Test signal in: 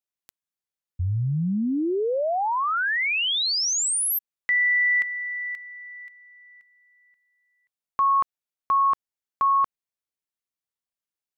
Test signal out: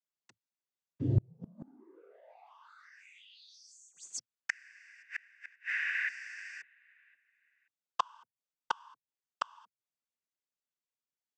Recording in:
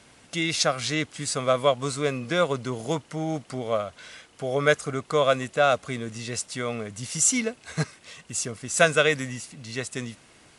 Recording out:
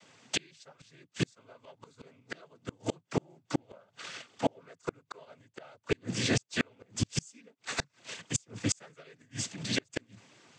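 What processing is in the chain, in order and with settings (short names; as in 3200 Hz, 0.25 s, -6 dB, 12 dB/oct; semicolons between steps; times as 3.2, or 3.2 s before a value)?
sample leveller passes 2; noise vocoder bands 16; flipped gate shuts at -15 dBFS, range -38 dB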